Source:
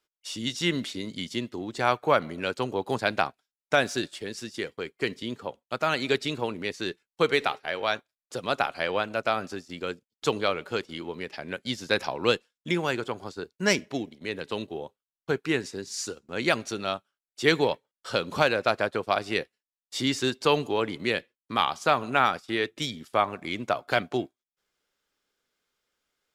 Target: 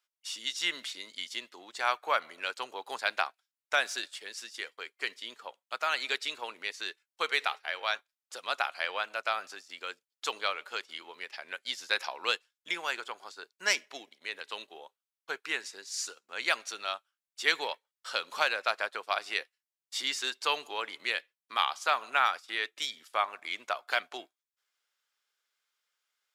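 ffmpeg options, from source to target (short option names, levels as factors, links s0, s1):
-af "highpass=980,volume=0.841"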